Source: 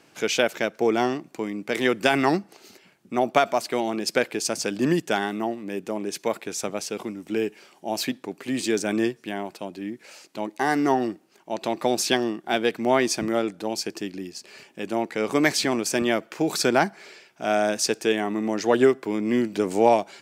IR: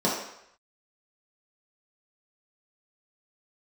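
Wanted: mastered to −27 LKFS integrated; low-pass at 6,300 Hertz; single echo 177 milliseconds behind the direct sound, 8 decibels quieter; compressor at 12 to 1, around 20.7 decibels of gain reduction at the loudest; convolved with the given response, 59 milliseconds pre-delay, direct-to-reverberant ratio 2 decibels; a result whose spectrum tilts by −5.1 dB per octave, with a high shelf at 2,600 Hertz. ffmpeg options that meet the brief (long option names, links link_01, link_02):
-filter_complex "[0:a]lowpass=6300,highshelf=frequency=2600:gain=-3.5,acompressor=threshold=-34dB:ratio=12,aecho=1:1:177:0.398,asplit=2[link_01][link_02];[1:a]atrim=start_sample=2205,adelay=59[link_03];[link_02][link_03]afir=irnorm=-1:irlink=0,volume=-16dB[link_04];[link_01][link_04]amix=inputs=2:normalize=0,volume=7.5dB"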